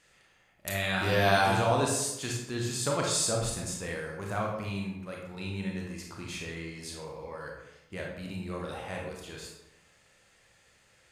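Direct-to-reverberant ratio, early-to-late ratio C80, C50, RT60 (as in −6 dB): −1.5 dB, 5.5 dB, 2.0 dB, 0.85 s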